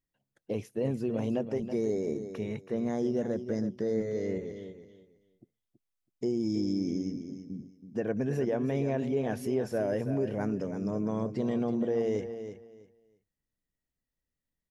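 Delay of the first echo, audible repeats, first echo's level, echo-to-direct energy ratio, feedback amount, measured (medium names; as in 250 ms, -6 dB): 326 ms, 2, -10.0 dB, -10.0 dB, 21%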